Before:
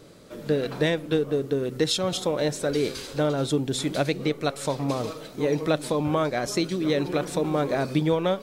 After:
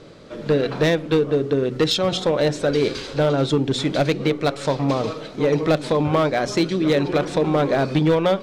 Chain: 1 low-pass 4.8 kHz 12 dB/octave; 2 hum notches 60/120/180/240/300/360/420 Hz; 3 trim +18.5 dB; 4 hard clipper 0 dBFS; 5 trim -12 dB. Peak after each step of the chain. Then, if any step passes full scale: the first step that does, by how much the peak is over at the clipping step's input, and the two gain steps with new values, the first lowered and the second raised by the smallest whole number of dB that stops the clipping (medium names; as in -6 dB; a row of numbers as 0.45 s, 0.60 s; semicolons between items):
-10.0 dBFS, -10.0 dBFS, +8.5 dBFS, 0.0 dBFS, -12.0 dBFS; step 3, 8.5 dB; step 3 +9.5 dB, step 5 -3 dB